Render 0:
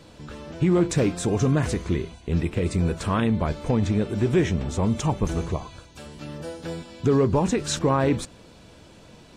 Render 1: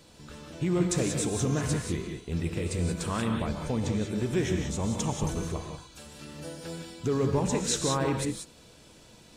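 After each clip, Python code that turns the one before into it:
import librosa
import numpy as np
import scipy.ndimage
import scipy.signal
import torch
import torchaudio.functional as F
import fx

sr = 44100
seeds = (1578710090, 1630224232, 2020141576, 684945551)

y = fx.high_shelf(x, sr, hz=4600.0, db=11.5)
y = fx.rev_gated(y, sr, seeds[0], gate_ms=210, shape='rising', drr_db=3.0)
y = y * 10.0 ** (-8.0 / 20.0)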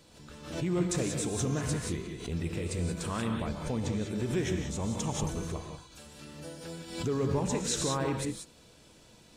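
y = fx.pre_swell(x, sr, db_per_s=82.0)
y = y * 10.0 ** (-3.5 / 20.0)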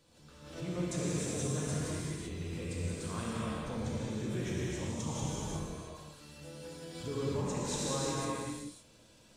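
y = fx.comb_fb(x, sr, f0_hz=540.0, decay_s=0.48, harmonics='all', damping=0.0, mix_pct=70)
y = fx.rev_gated(y, sr, seeds[1], gate_ms=410, shape='flat', drr_db=-5.0)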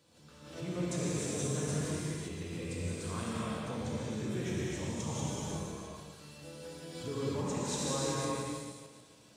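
y = fx.reverse_delay_fb(x, sr, ms=143, feedback_pct=55, wet_db=-9.5)
y = scipy.signal.sosfilt(scipy.signal.butter(2, 83.0, 'highpass', fs=sr, output='sos'), y)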